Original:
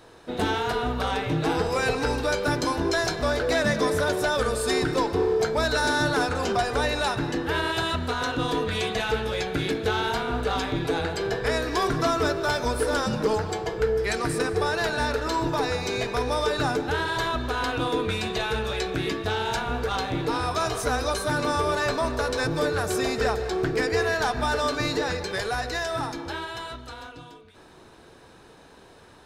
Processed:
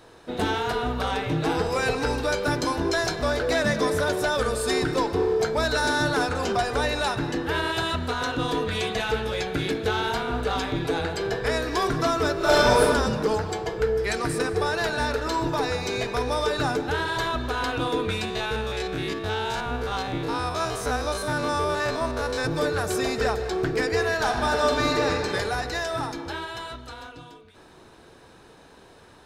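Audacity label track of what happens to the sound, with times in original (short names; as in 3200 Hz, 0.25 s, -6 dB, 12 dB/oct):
12.360000	12.810000	reverb throw, RT60 1.3 s, DRR -8 dB
18.250000	22.450000	stepped spectrum every 50 ms
24.150000	25.310000	reverb throw, RT60 2.2 s, DRR 2 dB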